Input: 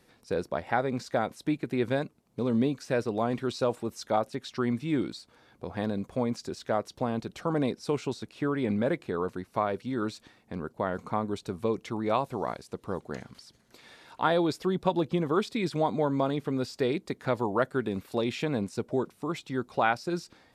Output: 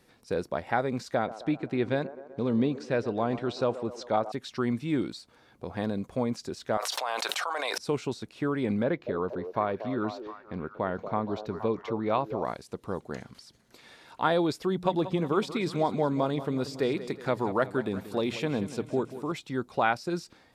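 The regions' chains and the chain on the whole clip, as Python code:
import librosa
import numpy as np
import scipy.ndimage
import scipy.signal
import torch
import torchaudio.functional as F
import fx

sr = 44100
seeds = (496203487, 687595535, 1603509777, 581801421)

y = fx.chain(x, sr, fx.lowpass(hz=5200.0, slope=12),
    fx.echo_wet_bandpass(ms=127, feedback_pct=64, hz=640.0, wet_db=-13.0), at=(1.15, 4.32))
y = fx.chain(y, sr, fx.highpass(hz=740.0, slope=24),
    fx.env_flatten(amount_pct=100), at=(6.77, 7.78))
y = fx.chain(y, sr, fx.moving_average(points=5),
    fx.echo_stepped(ms=235, hz=490.0, octaves=0.7, feedback_pct=70, wet_db=-6.5), at=(8.83, 12.45))
y = fx.chain(y, sr, fx.hum_notches(base_hz=60, count=3),
    fx.echo_feedback(ms=184, feedback_pct=52, wet_db=-13.5), at=(14.65, 19.32))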